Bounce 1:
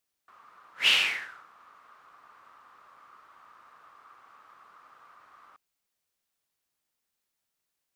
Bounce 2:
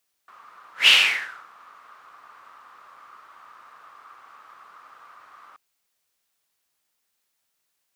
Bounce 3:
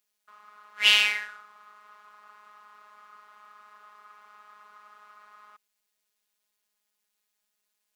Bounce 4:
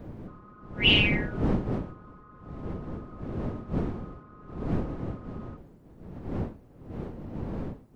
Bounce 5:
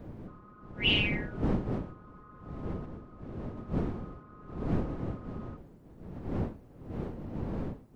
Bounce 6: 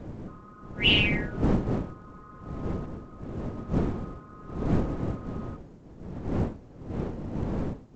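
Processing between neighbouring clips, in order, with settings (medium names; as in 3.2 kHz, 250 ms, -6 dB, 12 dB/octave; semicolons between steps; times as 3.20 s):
bass shelf 410 Hz -6.5 dB; trim +7.5 dB
robot voice 209 Hz; trim -2 dB
resonances exaggerated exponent 2; wind noise 270 Hz -31 dBFS; trim -2 dB
random-step tremolo 1.4 Hz
trim +5 dB; µ-law 128 kbps 16 kHz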